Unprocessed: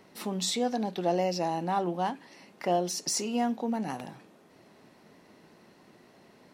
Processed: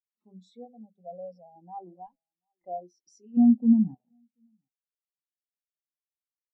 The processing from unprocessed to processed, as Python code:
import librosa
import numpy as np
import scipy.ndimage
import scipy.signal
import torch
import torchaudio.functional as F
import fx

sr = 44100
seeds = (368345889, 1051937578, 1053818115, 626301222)

y = fx.lower_of_two(x, sr, delay_ms=1.0, at=(2.06, 2.65))
y = fx.hum_notches(y, sr, base_hz=50, count=10)
y = fx.peak_eq(y, sr, hz=120.0, db=15.0, octaves=3.0, at=(3.37, 3.95))
y = fx.leveller(y, sr, passes=1)
y = fx.fixed_phaser(y, sr, hz=320.0, stages=6, at=(0.65, 1.56))
y = y + 10.0 ** (-18.0 / 20.0) * np.pad(y, (int(735 * sr / 1000.0), 0))[:len(y)]
y = fx.spectral_expand(y, sr, expansion=2.5)